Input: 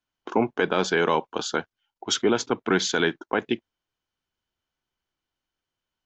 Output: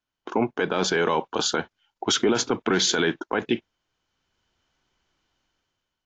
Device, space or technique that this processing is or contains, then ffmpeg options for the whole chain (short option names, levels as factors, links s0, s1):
low-bitrate web radio: -af "dynaudnorm=f=200:g=7:m=4.47,alimiter=limit=0.251:level=0:latency=1:release=24" -ar 16000 -c:a aac -b:a 48k